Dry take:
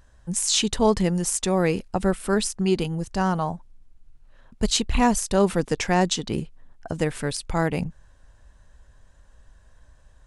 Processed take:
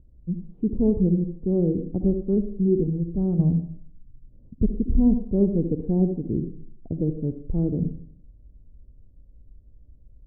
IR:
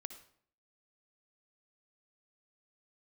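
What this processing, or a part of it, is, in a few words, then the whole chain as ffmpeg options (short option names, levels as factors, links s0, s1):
next room: -filter_complex "[0:a]lowpass=f=380:w=0.5412,lowpass=f=380:w=1.3066[s0];[1:a]atrim=start_sample=2205[s1];[s0][s1]afir=irnorm=-1:irlink=0,asettb=1/sr,asplit=3[s2][s3][s4];[s2]atrim=end=3.394[s5];[s3]atrim=start=3.39:end=4.63,asetpts=PTS-STARTPTS,afade=t=in:d=0.004:c=qsin,afade=t=out:st=1.236:d=0.004:c=qsin,equalizer=f=130:w=0.48:g=8.5[s6];[s4]atrim=start=4.626[s7];[s5][s6]acrossfade=d=0.004:c1=hsin:c2=qsin[s8];[s8][s7]acrossfade=d=0.004:c1=qsin:c2=hsin,volume=2.11"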